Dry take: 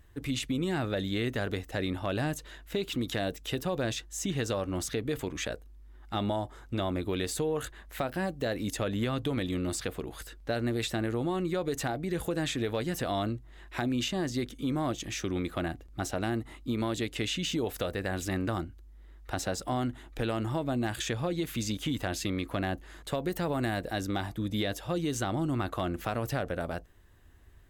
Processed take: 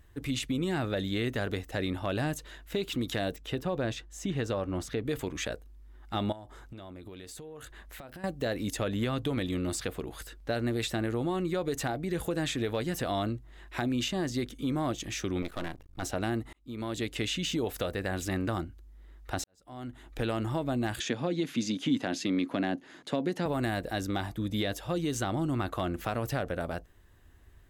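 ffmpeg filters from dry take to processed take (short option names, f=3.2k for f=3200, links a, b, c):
-filter_complex "[0:a]asettb=1/sr,asplit=3[a][b][c];[a]atrim=end=3.364[d];[b]atrim=start=3.36:end=5.05,asetpts=PTS-STARTPTS,afade=t=in:d=0.004:c=qsin,afade=t=out:st=1.686:d=0.004:c=qsin,highshelf=f=4k:g=-10.5[e];[c]atrim=start=5.046[f];[d][e]acrossfade=d=0.004:c1=hsin:c2=qsin[g];[g][f]acrossfade=d=0.004:c1=qsin:c2=hsin,asettb=1/sr,asplit=3[h][i][j];[h]atrim=end=6.324[k];[i]atrim=start=6.32:end=8.24,asetpts=PTS-STARTPTS,afade=t=in:d=0.004:c=qsin,afade=t=out:st=1.916:d=0.004:c=qsin,acompressor=threshold=-41dB:ratio=16:attack=3.2:release=140:knee=1:detection=peak[l];[j]atrim=start=8.236[m];[k][l]acrossfade=d=0.004:c1=hsin:c2=qsin[n];[n][m]acrossfade=d=0.004:c1=qsin:c2=hsin,asettb=1/sr,asplit=3[o][p][q];[o]atrim=end=15.424[r];[p]atrim=start=15.42:end=16.03,asetpts=PTS-STARTPTS,afade=t=in:d=0.004:c=qsin,afade=t=out:st=0.606:d=0.004:c=qsin,aeval=exprs='max(val(0),0)':c=same[s];[q]atrim=start=16.026[t];[r][s]acrossfade=d=0.004:c1=hsin:c2=qsin[u];[u][t]acrossfade=d=0.004:c1=qsin:c2=hsin,asettb=1/sr,asplit=3[v][w][x];[v]atrim=end=21.004[y];[w]atrim=start=21:end=23.46,asetpts=PTS-STARTPTS,afade=t=in:d=0.004:c=qsin,afade=t=out:st=2.456:d=0.004:c=qsin,highpass=f=140:w=0.5412,highpass=f=140:w=1.3066,equalizer=f=260:t=q:w=4:g=9,equalizer=f=1.2k:t=q:w=4:g=-3,equalizer=f=8.2k:t=q:w=4:g=-9,lowpass=f=9.3k:w=0.5412,lowpass=f=9.3k:w=1.3066[z];[x]atrim=start=23.456[aa];[y][z]acrossfade=d=0.004:c1=hsin:c2=qsin[ab];[ab][aa]acrossfade=d=0.004:c1=qsin:c2=hsin,asplit=3[ac][ad][ae];[ac]atrim=end=16.53,asetpts=PTS-STARTPTS,afade=t=out:st=16.526:d=0.004:c=hsin[af];[ad]atrim=start=16.53:end=19.44,asetpts=PTS-STARTPTS,afade=t=in:d=0.54,afade=t=out:st=2.906:d=0.004:c=hsin[ag];[ae]atrim=start=19.44,asetpts=PTS-STARTPTS,afade=t=in:d=0.68:c=qua[ah];[af][ag][ah]concat=n=3:v=0:a=1"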